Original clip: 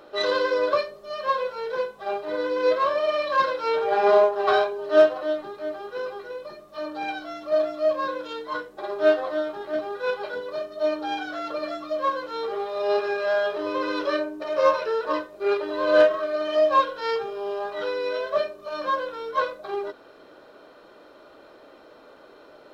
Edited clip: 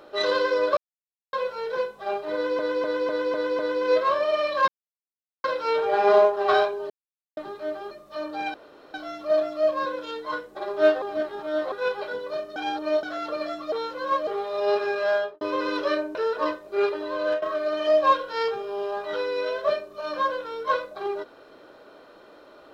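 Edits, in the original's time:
0.77–1.33 mute
2.34–2.59 loop, 6 plays
3.43 insert silence 0.76 s
4.89–5.36 mute
5.9–6.53 cut
7.16 insert room tone 0.40 s
9.24–9.94 reverse
10.78–11.25 reverse
11.94–12.49 reverse
13.36–13.63 studio fade out
14.37–14.83 cut
15.56–16.1 fade out, to -14.5 dB

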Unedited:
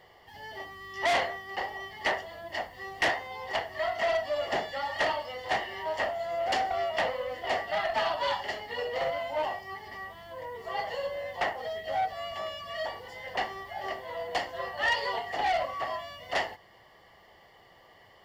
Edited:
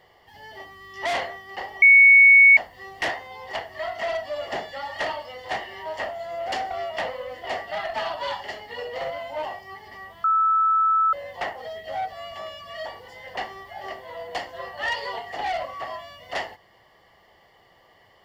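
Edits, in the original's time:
1.82–2.57 bleep 2220 Hz -8.5 dBFS
10.24–11.13 bleep 1310 Hz -16.5 dBFS

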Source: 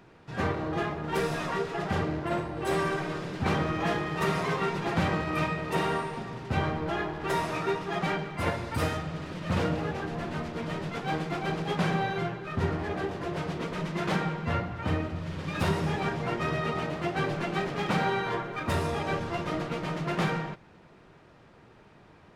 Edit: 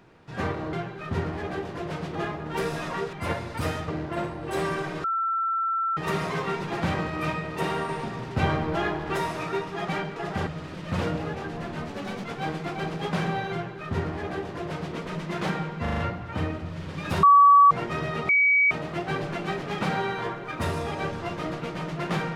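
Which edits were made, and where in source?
1.71–2.02 swap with 8.3–9.05
3.18–4.11 bleep 1340 Hz -23 dBFS
6.03–7.3 gain +4 dB
10.47–10.9 speed 123%
12.19–13.61 copy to 0.73
14.48 stutter 0.04 s, 5 plays
15.73–16.21 bleep 1140 Hz -11 dBFS
16.79 add tone 2270 Hz -16.5 dBFS 0.42 s

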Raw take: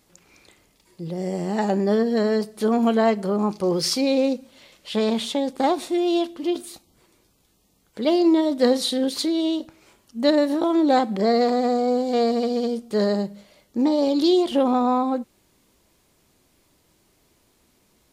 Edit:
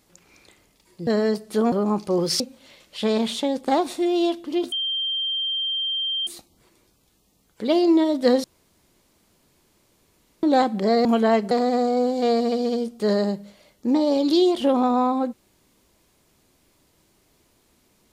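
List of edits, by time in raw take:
1.07–2.14 cut
2.79–3.25 move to 11.42
3.93–4.32 cut
6.64 add tone 3160 Hz -22.5 dBFS 1.55 s
8.81–10.8 room tone

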